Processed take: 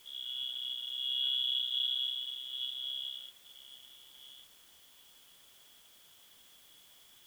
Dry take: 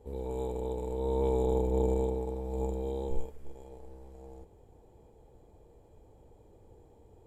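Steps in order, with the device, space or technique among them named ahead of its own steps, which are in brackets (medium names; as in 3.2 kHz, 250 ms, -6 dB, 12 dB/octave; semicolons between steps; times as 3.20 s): scrambled radio voice (band-pass 330–2700 Hz; frequency inversion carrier 3.8 kHz; white noise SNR 22 dB); trim -2 dB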